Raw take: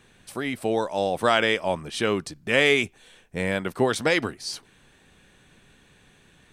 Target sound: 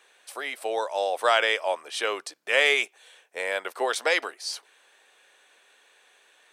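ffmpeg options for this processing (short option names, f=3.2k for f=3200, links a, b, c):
-af "highpass=f=490:w=0.5412,highpass=f=490:w=1.3066"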